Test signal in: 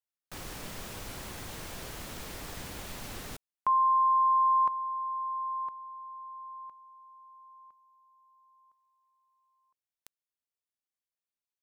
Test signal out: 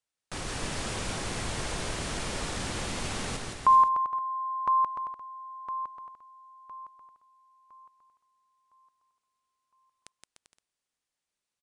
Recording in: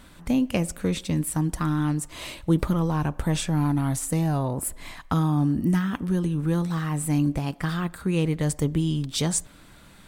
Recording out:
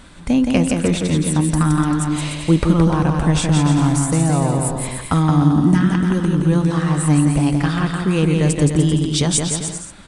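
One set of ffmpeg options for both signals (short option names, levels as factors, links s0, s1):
-af "aecho=1:1:170|297.5|393.1|464.8|518.6:0.631|0.398|0.251|0.158|0.1,aresample=22050,aresample=44100,volume=2.11"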